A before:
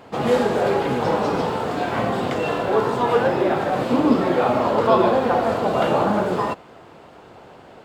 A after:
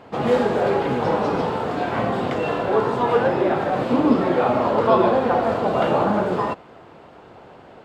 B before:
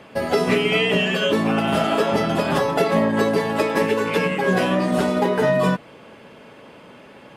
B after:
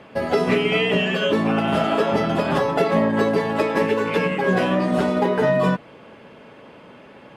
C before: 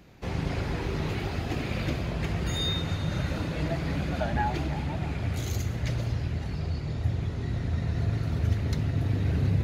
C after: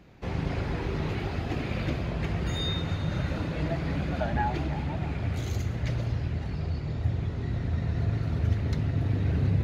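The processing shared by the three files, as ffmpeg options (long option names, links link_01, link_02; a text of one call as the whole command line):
ffmpeg -i in.wav -af "highshelf=frequency=5800:gain=-10.5" out.wav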